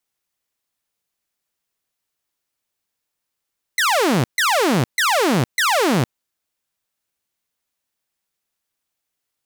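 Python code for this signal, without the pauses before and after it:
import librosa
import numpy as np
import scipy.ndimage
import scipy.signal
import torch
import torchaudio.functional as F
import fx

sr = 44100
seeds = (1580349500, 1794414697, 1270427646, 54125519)

y = fx.laser_zaps(sr, level_db=-12, start_hz=2100.0, end_hz=110.0, length_s=0.46, wave='saw', shots=4, gap_s=0.14)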